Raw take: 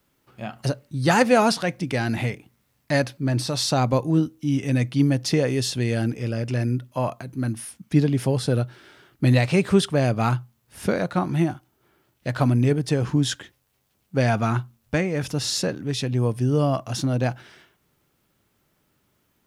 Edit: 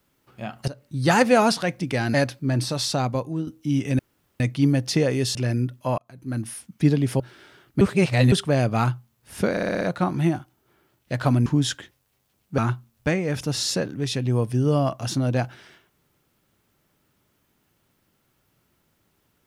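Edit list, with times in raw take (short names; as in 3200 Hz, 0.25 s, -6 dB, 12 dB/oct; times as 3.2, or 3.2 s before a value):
0.68–1 fade in equal-power, from -17.5 dB
2.14–2.92 cut
3.44–4.25 fade out, to -10 dB
4.77 insert room tone 0.41 s
5.72–6.46 cut
7.09–7.57 fade in
8.31–8.65 cut
9.26–9.77 reverse
10.96 stutter 0.06 s, 6 plays
12.61–13.07 cut
14.19–14.45 cut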